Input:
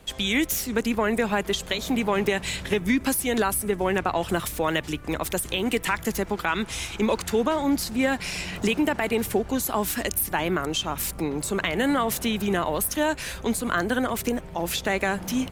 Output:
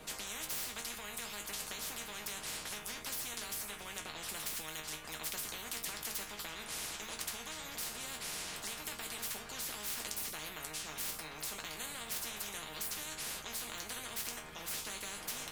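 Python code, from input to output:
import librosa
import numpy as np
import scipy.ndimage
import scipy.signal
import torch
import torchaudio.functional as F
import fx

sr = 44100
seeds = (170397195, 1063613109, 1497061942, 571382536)

y = fx.resonator_bank(x, sr, root=51, chord='sus4', decay_s=0.22)
y = fx.spectral_comp(y, sr, ratio=10.0)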